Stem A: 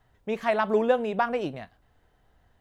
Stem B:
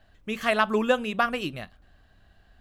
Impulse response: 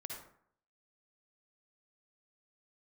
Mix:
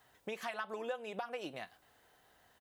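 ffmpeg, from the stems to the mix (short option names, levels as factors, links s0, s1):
-filter_complex "[0:a]highpass=f=500:p=1,highshelf=f=5100:g=10,acompressor=threshold=0.0141:ratio=2,volume=1.26[s0];[1:a]highpass=f=330:w=0.5412,highpass=f=330:w=1.3066,adelay=3.5,volume=0.237[s1];[s0][s1]amix=inputs=2:normalize=0,acompressor=threshold=0.00891:ratio=2.5"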